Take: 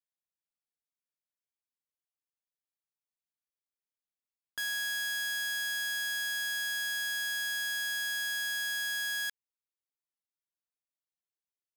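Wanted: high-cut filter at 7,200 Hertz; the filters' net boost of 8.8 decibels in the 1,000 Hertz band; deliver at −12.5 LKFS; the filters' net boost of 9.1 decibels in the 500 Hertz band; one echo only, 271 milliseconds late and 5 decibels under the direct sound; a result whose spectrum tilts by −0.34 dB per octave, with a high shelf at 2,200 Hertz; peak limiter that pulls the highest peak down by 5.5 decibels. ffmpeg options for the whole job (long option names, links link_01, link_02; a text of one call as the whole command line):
ffmpeg -i in.wav -af "lowpass=7200,equalizer=frequency=500:width_type=o:gain=9,equalizer=frequency=1000:width_type=o:gain=9,highshelf=frequency=2200:gain=-7,alimiter=level_in=6.5dB:limit=-24dB:level=0:latency=1,volume=-6.5dB,aecho=1:1:271:0.562,volume=21dB" out.wav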